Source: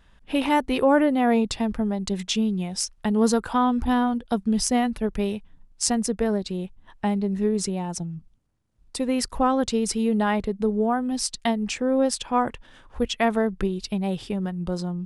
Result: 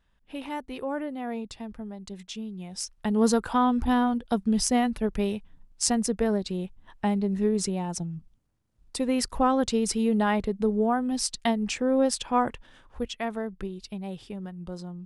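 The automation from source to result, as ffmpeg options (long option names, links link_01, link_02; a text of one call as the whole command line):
ffmpeg -i in.wav -af "volume=-1.5dB,afade=type=in:start_time=2.53:duration=0.73:silence=0.266073,afade=type=out:start_time=12.44:duration=0.78:silence=0.398107" out.wav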